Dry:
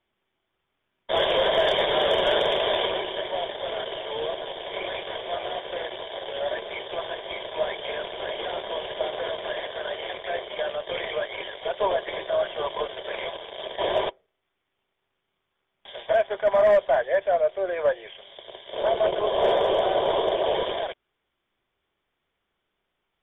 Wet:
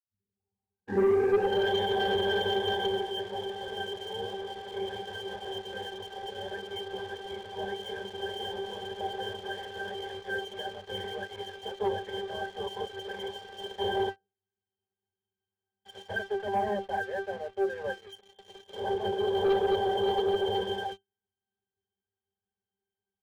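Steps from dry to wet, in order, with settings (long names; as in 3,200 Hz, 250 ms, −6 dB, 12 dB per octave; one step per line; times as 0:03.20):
turntable start at the beginning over 1.74 s
resonances in every octave G, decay 0.19 s
leveller curve on the samples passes 2
level +3 dB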